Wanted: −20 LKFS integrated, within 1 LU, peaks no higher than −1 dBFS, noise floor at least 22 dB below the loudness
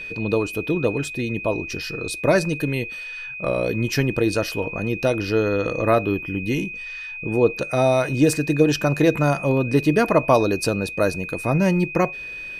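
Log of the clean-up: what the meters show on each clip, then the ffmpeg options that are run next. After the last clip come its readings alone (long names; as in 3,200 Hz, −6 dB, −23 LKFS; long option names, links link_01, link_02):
interfering tone 2,500 Hz; level of the tone −31 dBFS; integrated loudness −21.5 LKFS; sample peak −3.5 dBFS; target loudness −20.0 LKFS
→ -af "bandreject=frequency=2500:width=30"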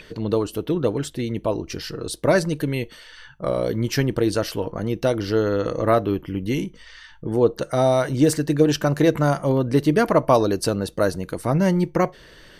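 interfering tone none found; integrated loudness −22.0 LKFS; sample peak −3.5 dBFS; target loudness −20.0 LKFS
→ -af "volume=2dB"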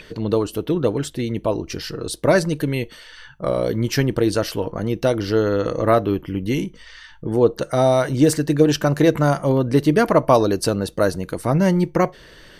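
integrated loudness −20.0 LKFS; sample peak −1.5 dBFS; background noise floor −46 dBFS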